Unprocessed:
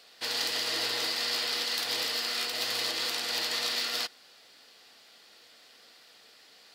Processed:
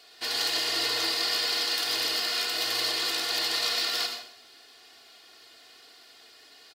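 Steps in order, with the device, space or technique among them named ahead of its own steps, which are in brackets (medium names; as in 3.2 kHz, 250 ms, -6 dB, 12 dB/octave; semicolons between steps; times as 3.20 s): microphone above a desk (comb 2.8 ms, depth 62%; reverberation RT60 0.55 s, pre-delay 74 ms, DRR 4.5 dB)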